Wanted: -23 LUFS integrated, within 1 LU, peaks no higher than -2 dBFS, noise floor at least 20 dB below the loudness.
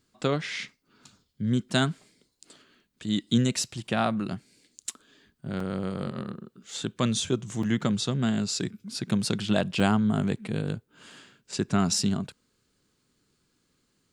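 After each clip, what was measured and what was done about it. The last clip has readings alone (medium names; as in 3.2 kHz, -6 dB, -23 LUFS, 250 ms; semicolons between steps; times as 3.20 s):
dropouts 3; longest dropout 3.6 ms; loudness -28.5 LUFS; peak level -8.5 dBFS; loudness target -23.0 LUFS
-> interpolate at 5.60/7.63/9.80 s, 3.6 ms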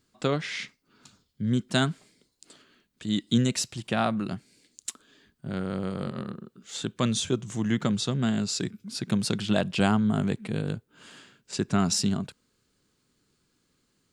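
dropouts 0; loudness -28.5 LUFS; peak level -8.5 dBFS; loudness target -23.0 LUFS
-> trim +5.5 dB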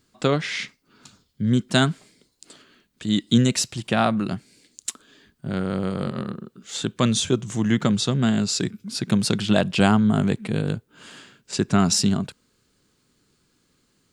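loudness -23.0 LUFS; peak level -3.0 dBFS; noise floor -68 dBFS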